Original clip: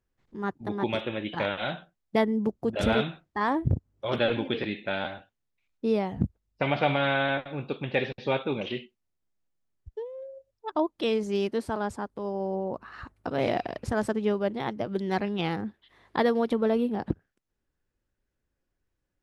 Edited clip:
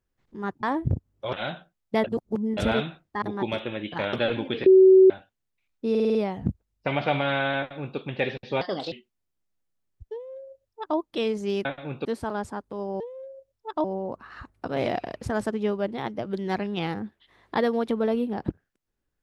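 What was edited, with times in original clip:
0:00.63–0:01.54: swap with 0:03.43–0:04.13
0:02.25–0:02.78: reverse
0:04.66–0:05.10: beep over 378 Hz −10 dBFS
0:05.90: stutter 0.05 s, 6 plays
0:07.33–0:07.73: duplicate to 0:11.51
0:08.36–0:08.78: play speed 135%
0:09.99–0:10.83: duplicate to 0:12.46

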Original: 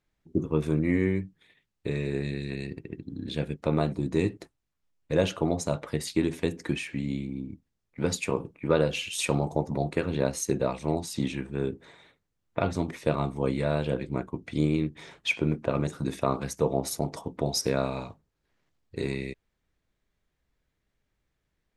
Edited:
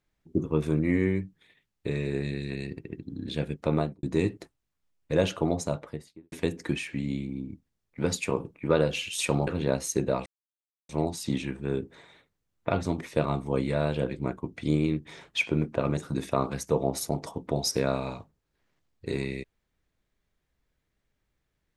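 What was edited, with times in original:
0:03.75–0:04.03: fade out and dull
0:05.52–0:06.32: fade out and dull
0:09.47–0:10.00: remove
0:10.79: splice in silence 0.63 s

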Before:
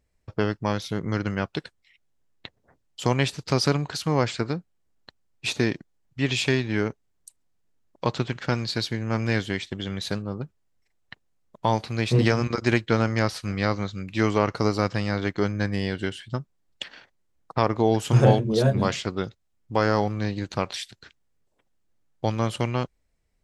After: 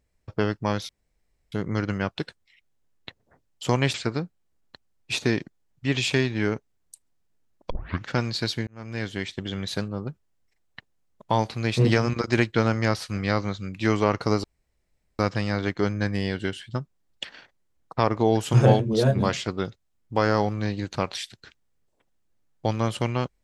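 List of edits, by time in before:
0:00.89: splice in room tone 0.63 s
0:03.31–0:04.28: remove
0:08.04: tape start 0.36 s
0:09.01–0:09.70: fade in
0:14.78: splice in room tone 0.75 s

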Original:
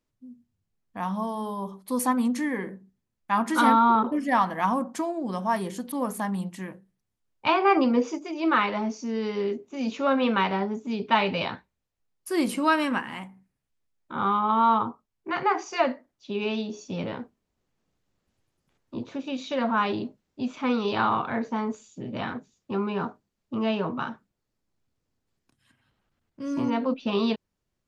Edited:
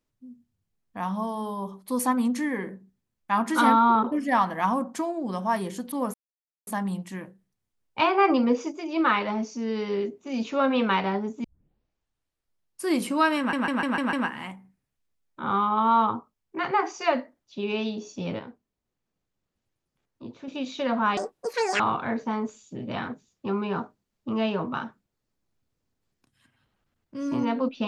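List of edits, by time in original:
0:06.14: splice in silence 0.53 s
0:10.91: tape start 1.41 s
0:12.85: stutter 0.15 s, 6 plays
0:17.11–0:19.20: clip gain −6.5 dB
0:19.89–0:21.05: play speed 185%

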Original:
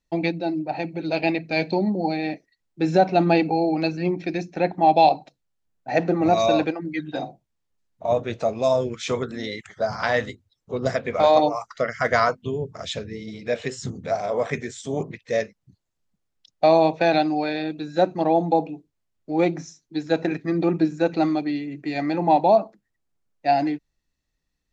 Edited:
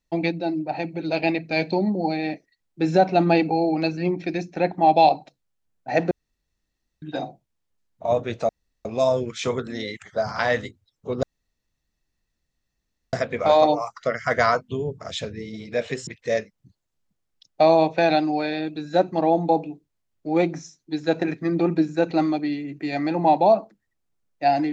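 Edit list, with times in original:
0:06.11–0:07.02: fill with room tone
0:08.49: splice in room tone 0.36 s
0:10.87: splice in room tone 1.90 s
0:13.81–0:15.10: remove

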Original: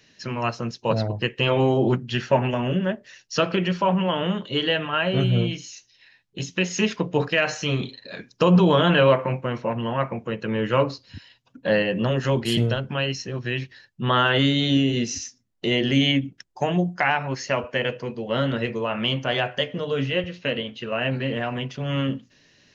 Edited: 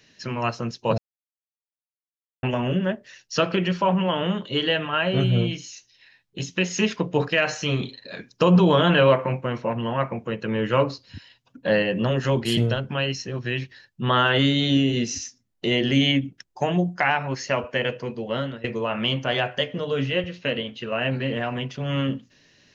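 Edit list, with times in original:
0:00.98–0:02.43: silence
0:18.24–0:18.64: fade out, to −20 dB

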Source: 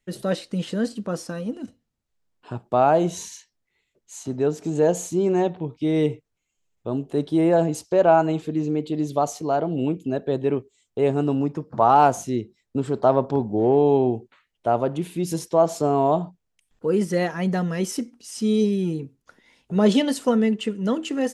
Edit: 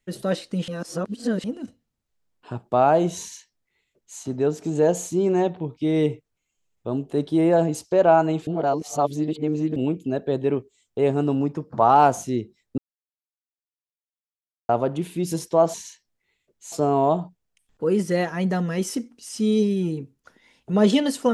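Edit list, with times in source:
0:00.68–0:01.44: reverse
0:03.21–0:04.19: duplicate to 0:15.74
0:08.47–0:09.76: reverse
0:12.78–0:14.69: silence

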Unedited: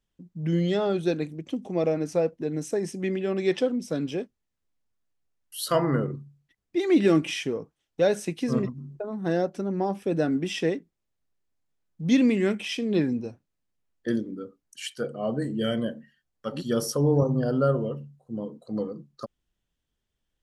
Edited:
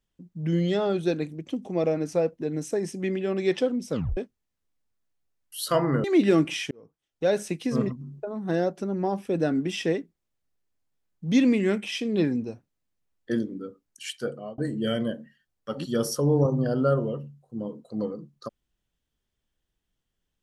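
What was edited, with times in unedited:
0:03.92: tape stop 0.25 s
0:06.04–0:06.81: remove
0:07.48–0:08.16: fade in
0:15.08–0:15.35: fade out

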